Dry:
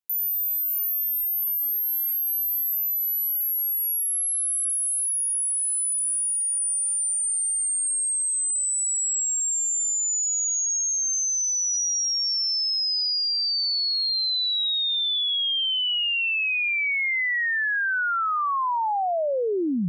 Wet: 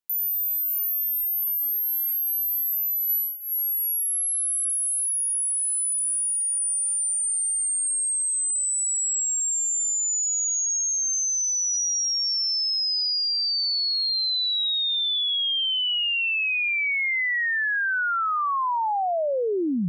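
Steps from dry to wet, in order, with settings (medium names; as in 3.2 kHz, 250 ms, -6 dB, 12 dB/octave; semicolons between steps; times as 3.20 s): 3.09–3.52 s: comb 1.5 ms, depth 81%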